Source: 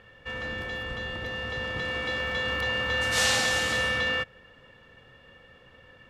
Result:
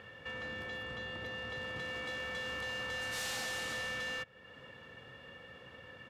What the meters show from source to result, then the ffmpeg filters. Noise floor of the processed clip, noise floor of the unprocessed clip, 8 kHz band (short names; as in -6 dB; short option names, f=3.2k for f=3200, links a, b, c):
-55 dBFS, -55 dBFS, -12.5 dB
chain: -af "highpass=88,asoftclip=type=hard:threshold=-26.5dB,aresample=32000,aresample=44100,acompressor=threshold=-50dB:ratio=2,volume=2dB"